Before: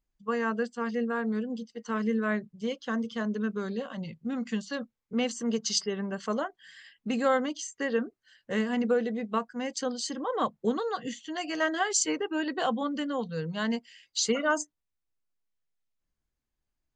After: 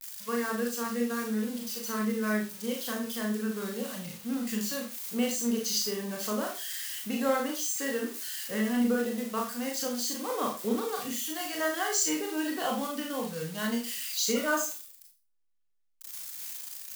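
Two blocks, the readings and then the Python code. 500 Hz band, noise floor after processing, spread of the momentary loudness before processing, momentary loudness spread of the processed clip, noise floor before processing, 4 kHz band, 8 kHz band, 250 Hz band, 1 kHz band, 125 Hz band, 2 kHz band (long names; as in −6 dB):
−2.0 dB, −65 dBFS, 9 LU, 8 LU, −85 dBFS, +1.0 dB, +3.0 dB, −0.5 dB, −2.5 dB, −2.0 dB, −1.5 dB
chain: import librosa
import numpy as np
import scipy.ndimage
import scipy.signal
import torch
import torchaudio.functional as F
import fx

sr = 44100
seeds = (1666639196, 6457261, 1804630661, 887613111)

y = x + 0.5 * 10.0 ** (-25.5 / 20.0) * np.diff(np.sign(x), prepend=np.sign(x[:1]))
y = fx.rev_schroeder(y, sr, rt60_s=0.34, comb_ms=26, drr_db=0.0)
y = y * 10.0 ** (-5.0 / 20.0)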